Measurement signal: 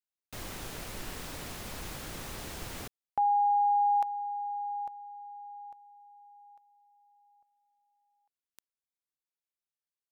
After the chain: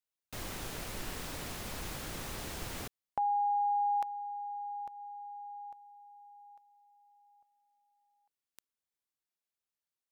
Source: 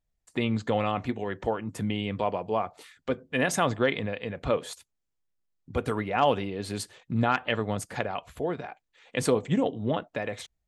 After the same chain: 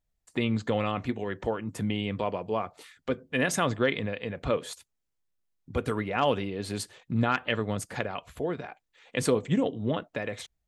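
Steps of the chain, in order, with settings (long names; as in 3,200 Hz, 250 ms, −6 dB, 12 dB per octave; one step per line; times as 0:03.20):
dynamic equaliser 780 Hz, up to −5 dB, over −41 dBFS, Q 2.2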